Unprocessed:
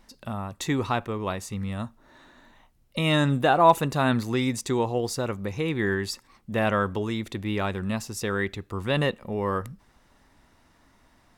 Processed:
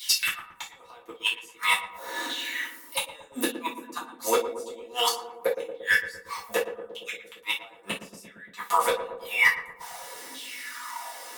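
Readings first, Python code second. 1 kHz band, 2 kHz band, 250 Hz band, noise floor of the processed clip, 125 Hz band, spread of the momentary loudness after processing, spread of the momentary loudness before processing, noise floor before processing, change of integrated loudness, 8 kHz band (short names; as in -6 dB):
-4.0 dB, +5.0 dB, -13.5 dB, -52 dBFS, -28.5 dB, 15 LU, 12 LU, -62 dBFS, -2.0 dB, +5.5 dB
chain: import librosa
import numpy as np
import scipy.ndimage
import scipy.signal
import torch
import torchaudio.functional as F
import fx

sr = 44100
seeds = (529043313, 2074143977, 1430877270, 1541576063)

p1 = fx.filter_lfo_highpass(x, sr, shape='saw_down', hz=0.87, low_hz=270.0, high_hz=3500.0, q=5.2)
p2 = fx.low_shelf(p1, sr, hz=170.0, db=-10.5)
p3 = p2 + 0.54 * np.pad(p2, (int(4.1 * sr / 1000.0), 0))[:len(p2)]
p4 = fx.rider(p3, sr, range_db=5, speed_s=0.5)
p5 = fx.riaa(p4, sr, side='recording')
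p6 = fx.gate_flip(p5, sr, shuts_db=-17.0, range_db=-40)
p7 = np.clip(p6, -10.0 ** (-22.0 / 20.0), 10.0 ** (-22.0 / 20.0))
p8 = p7 + fx.echo_filtered(p7, sr, ms=115, feedback_pct=79, hz=860.0, wet_db=-8.0, dry=0)
p9 = fx.rev_gated(p8, sr, seeds[0], gate_ms=90, shape='falling', drr_db=-6.0)
y = p9 * 10.0 ** (5.0 / 20.0)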